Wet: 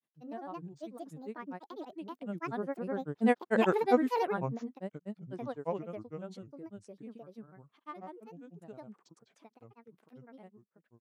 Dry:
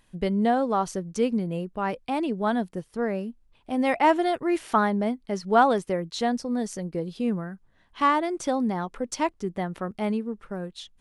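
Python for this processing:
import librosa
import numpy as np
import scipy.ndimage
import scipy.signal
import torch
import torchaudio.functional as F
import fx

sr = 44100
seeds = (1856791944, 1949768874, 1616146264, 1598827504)

y = fx.doppler_pass(x, sr, speed_mps=30, closest_m=11.0, pass_at_s=3.53)
y = scipy.signal.sosfilt(scipy.signal.butter(4, 160.0, 'highpass', fs=sr, output='sos'), y)
y = fx.peak_eq(y, sr, hz=4500.0, db=-5.5, octaves=2.3)
y = fx.granulator(y, sr, seeds[0], grain_ms=100.0, per_s=20.0, spray_ms=331.0, spread_st=7)
y = y * 10.0 ** (1.0 / 20.0)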